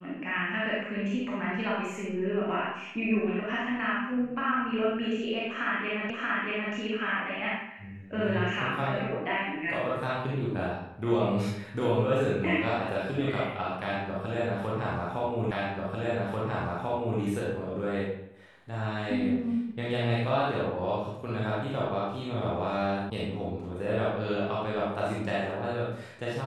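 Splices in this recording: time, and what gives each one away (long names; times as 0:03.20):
0:06.10: the same again, the last 0.63 s
0:15.51: the same again, the last 1.69 s
0:23.10: cut off before it has died away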